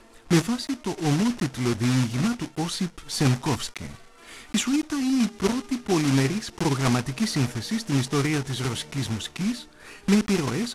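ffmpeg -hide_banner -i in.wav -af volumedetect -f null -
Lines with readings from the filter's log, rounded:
mean_volume: -25.2 dB
max_volume: -8.1 dB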